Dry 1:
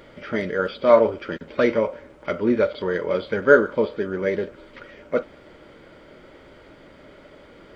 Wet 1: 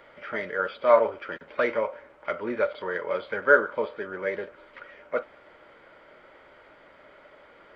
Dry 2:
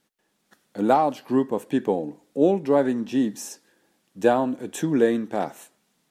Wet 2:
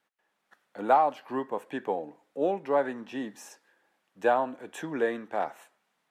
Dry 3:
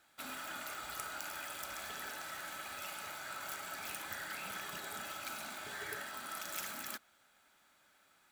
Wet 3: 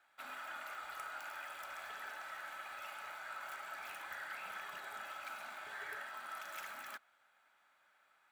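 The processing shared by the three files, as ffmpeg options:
-filter_complex "[0:a]acrossover=split=570 2700:gain=0.178 1 0.224[a][b][c];[a][b][c]amix=inputs=3:normalize=0"

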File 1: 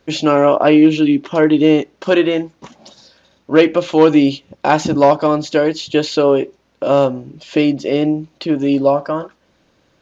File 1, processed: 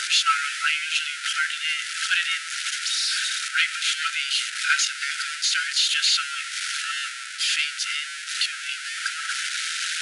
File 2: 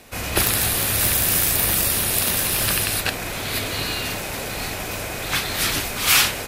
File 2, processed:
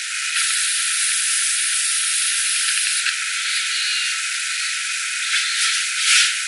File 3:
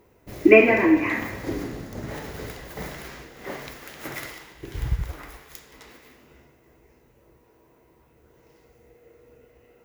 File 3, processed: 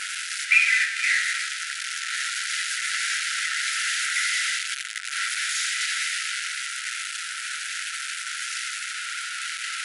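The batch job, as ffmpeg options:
-af "aeval=exprs='val(0)+0.5*0.133*sgn(val(0))':c=same,afftfilt=real='re*between(b*sr/4096,1300,11000)':imag='im*between(b*sr/4096,1300,11000)':win_size=4096:overlap=0.75"

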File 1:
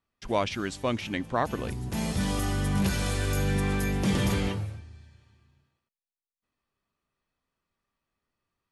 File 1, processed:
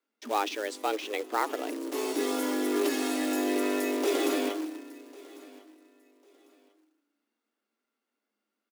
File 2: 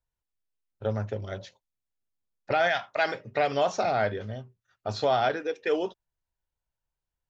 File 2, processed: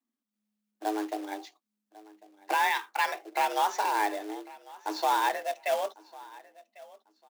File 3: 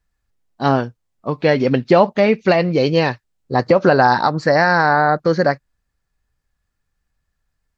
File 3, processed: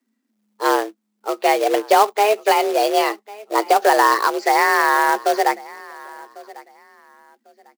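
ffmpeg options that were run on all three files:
-af "aecho=1:1:1098|2196:0.0841|0.021,acrusher=bits=3:mode=log:mix=0:aa=0.000001,afreqshift=210,volume=-2dB"

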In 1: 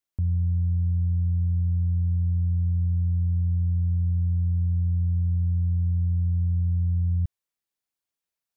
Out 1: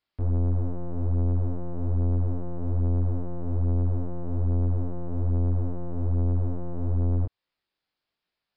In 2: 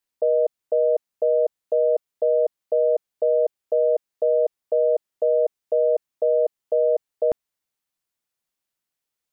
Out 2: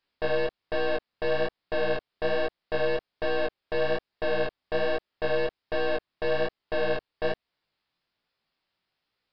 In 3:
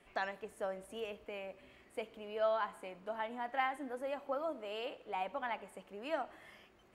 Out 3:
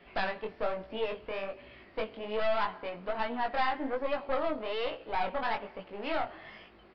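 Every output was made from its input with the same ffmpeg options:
-filter_complex "[0:a]asplit=2[a][b];[b]acompressor=threshold=-31dB:ratio=6,volume=2.5dB[c];[a][c]amix=inputs=2:normalize=0,aeval=exprs='(tanh(31.6*val(0)+0.65)-tanh(0.65))/31.6':c=same,aresample=11025,aresample=44100,flanger=delay=17:depth=6.2:speed=1.2,volume=7.5dB"

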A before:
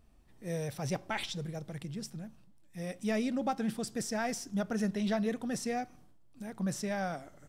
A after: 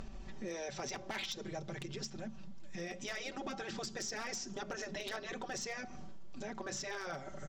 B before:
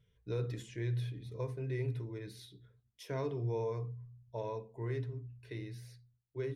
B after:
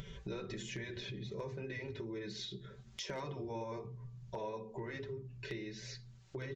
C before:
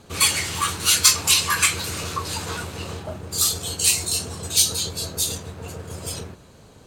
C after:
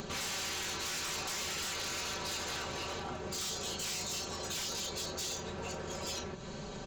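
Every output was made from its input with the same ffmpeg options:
-af "asoftclip=type=tanh:threshold=-18.5dB,aecho=1:1:5.2:0.77,aresample=16000,aresample=44100,afftfilt=real='re*lt(hypot(re,im),0.112)':imag='im*lt(hypot(re,im),0.112)':win_size=1024:overlap=0.75,acompressor=mode=upward:threshold=-37dB:ratio=2.5,bandreject=f=60:t=h:w=6,bandreject=f=120:t=h:w=6,bandreject=f=180:t=h:w=6,acompressor=threshold=-49dB:ratio=2,aeval=exprs='0.0133*(abs(mod(val(0)/0.0133+3,4)-2)-1)':c=same,volume=5.5dB"

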